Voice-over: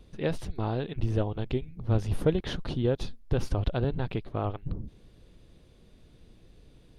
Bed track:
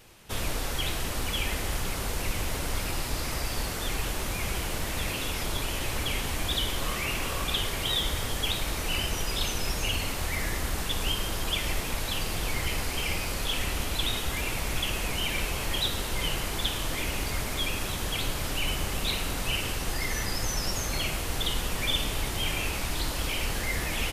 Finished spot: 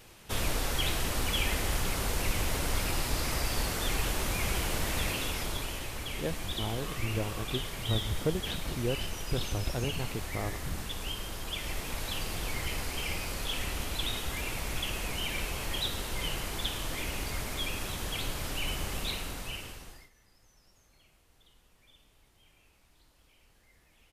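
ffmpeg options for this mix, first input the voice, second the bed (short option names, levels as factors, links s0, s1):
-filter_complex "[0:a]adelay=6000,volume=0.531[s0];[1:a]volume=1.5,afade=t=out:st=4.95:d=0.96:silence=0.398107,afade=t=in:st=11.48:d=0.56:silence=0.668344,afade=t=out:st=18.97:d=1.13:silence=0.0316228[s1];[s0][s1]amix=inputs=2:normalize=0"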